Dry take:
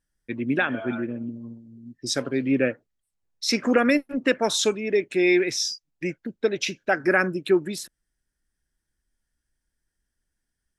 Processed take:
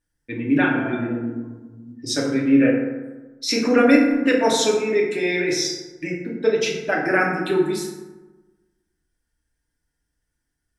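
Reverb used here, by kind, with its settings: FDN reverb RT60 1.2 s, low-frequency decay 1.1×, high-frequency decay 0.45×, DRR -3.5 dB; gain -1.5 dB

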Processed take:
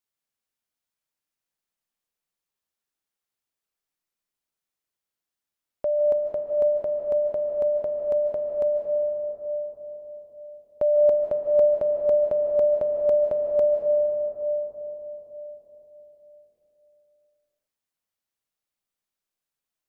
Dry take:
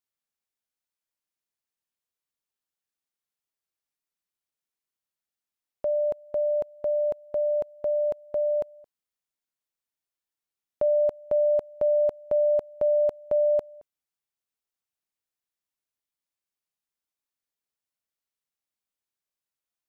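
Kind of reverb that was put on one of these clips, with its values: digital reverb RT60 4.4 s, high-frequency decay 0.25×, pre-delay 0.11 s, DRR 3.5 dB; gain +1.5 dB

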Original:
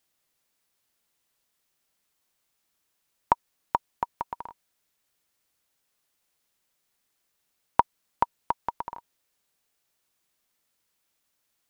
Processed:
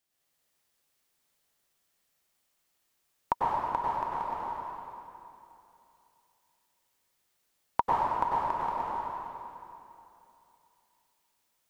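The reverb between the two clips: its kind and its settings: plate-style reverb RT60 2.8 s, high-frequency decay 0.9×, pre-delay 85 ms, DRR -7 dB; gain -7 dB

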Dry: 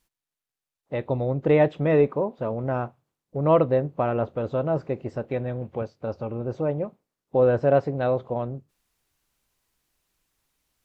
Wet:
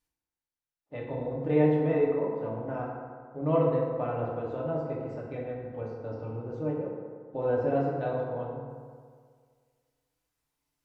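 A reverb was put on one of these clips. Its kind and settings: FDN reverb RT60 1.9 s, low-frequency decay 0.9×, high-frequency decay 0.45×, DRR -4.5 dB; gain -13 dB

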